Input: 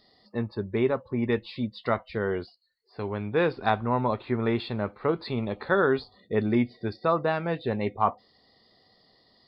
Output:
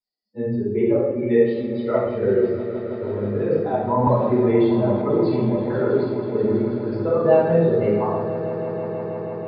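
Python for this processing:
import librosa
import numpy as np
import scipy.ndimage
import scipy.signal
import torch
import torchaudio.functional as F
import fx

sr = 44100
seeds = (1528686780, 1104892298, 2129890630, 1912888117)

y = fx.bin_expand(x, sr, power=2.0)
y = fx.low_shelf(y, sr, hz=450.0, db=-7.0, at=(1.13, 1.73))
y = fx.over_compress(y, sr, threshold_db=-30.0, ratio=-0.5)
y = fx.bandpass_q(y, sr, hz=460.0, q=0.96)
y = fx.echo_swell(y, sr, ms=161, loudest=5, wet_db=-16.5)
y = fx.room_shoebox(y, sr, seeds[0], volume_m3=330.0, walls='mixed', distance_m=7.6)
y = fx.band_squash(y, sr, depth_pct=70, at=(4.07, 5.02))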